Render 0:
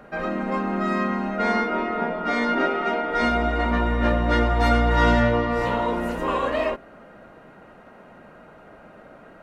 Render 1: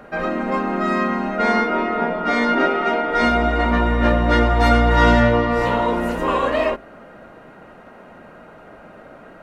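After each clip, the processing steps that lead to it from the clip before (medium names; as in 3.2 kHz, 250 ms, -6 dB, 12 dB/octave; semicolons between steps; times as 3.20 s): hum notches 50/100/150/200 Hz; trim +4.5 dB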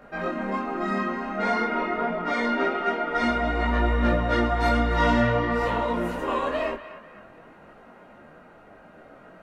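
band-passed feedback delay 245 ms, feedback 42%, band-pass 1.6 kHz, level -11.5 dB; detune thickener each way 18 cents; trim -3 dB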